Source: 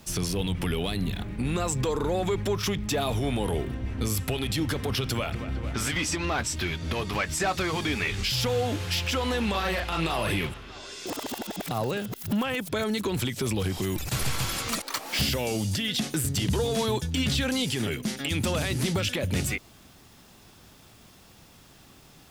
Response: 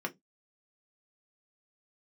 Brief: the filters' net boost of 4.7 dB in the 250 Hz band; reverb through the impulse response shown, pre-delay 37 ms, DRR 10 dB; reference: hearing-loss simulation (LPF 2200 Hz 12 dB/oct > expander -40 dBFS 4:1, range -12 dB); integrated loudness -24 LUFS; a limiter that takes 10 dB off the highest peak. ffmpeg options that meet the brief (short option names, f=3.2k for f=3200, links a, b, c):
-filter_complex "[0:a]equalizer=f=250:t=o:g=6,alimiter=limit=-23dB:level=0:latency=1,asplit=2[a][b];[1:a]atrim=start_sample=2205,adelay=37[c];[b][c]afir=irnorm=-1:irlink=0,volume=-14dB[d];[a][d]amix=inputs=2:normalize=0,lowpass=2.2k,agate=range=-12dB:threshold=-40dB:ratio=4,volume=8dB"